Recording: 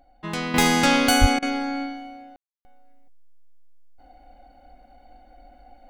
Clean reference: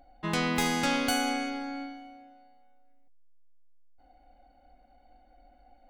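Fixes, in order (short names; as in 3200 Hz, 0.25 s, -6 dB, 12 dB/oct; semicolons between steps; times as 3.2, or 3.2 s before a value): de-plosive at 1.2; room tone fill 2.36–2.65; interpolate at 1.39, 33 ms; gain correction -9 dB, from 0.54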